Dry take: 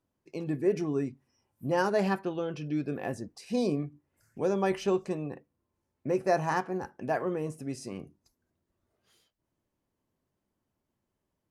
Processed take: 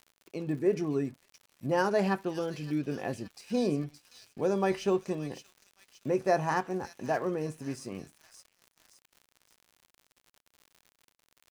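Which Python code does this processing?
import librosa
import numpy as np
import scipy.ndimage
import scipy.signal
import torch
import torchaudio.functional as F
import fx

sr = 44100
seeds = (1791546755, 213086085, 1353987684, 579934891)

y = fx.echo_wet_highpass(x, sr, ms=569, feedback_pct=58, hz=3400.0, wet_db=-5.0)
y = np.sign(y) * np.maximum(np.abs(y) - 10.0 ** (-59.0 / 20.0), 0.0)
y = fx.dmg_crackle(y, sr, seeds[0], per_s=78.0, level_db=-44.0)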